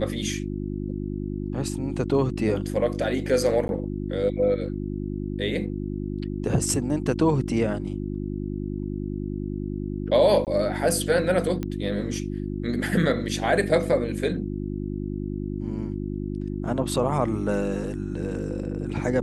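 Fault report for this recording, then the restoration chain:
hum 50 Hz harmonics 7 -30 dBFS
3.68–3.69 gap 11 ms
10.45–10.47 gap 18 ms
11.63 pop -17 dBFS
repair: de-click; de-hum 50 Hz, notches 7; interpolate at 3.68, 11 ms; interpolate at 10.45, 18 ms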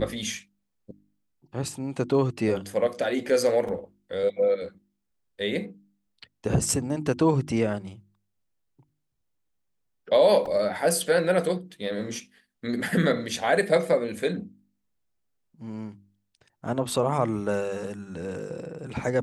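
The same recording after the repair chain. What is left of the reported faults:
none

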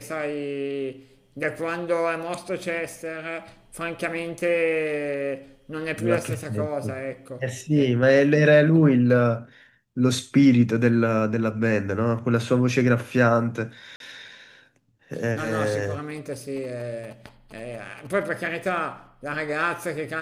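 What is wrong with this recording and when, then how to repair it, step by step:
13.96–14 gap 42 ms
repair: interpolate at 13.96, 42 ms

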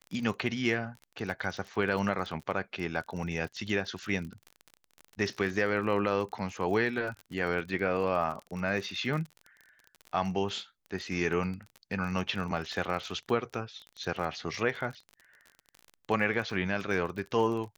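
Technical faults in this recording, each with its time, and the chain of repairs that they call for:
crackle 30/s -36 dBFS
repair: de-click

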